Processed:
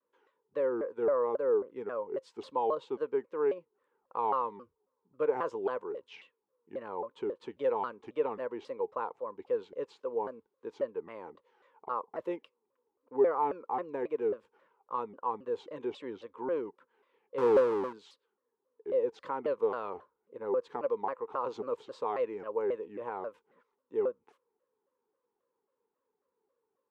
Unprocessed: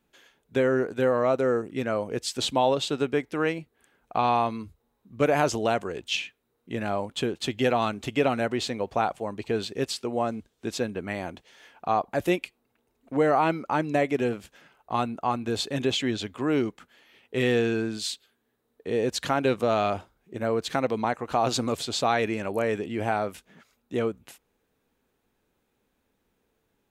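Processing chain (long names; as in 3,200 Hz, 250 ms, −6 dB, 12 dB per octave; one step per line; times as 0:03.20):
0:17.38–0:17.93: each half-wave held at its own peak
pair of resonant band-passes 680 Hz, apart 1 octave
pitch modulation by a square or saw wave saw down 3.7 Hz, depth 250 cents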